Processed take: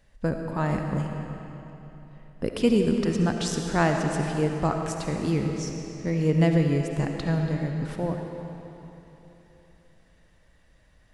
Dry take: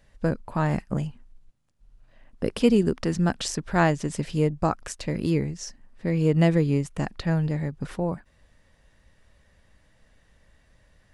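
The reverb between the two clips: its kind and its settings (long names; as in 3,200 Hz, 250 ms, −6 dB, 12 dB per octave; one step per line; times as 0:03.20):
comb and all-pass reverb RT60 3.4 s, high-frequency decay 0.85×, pre-delay 30 ms, DRR 3 dB
level −2 dB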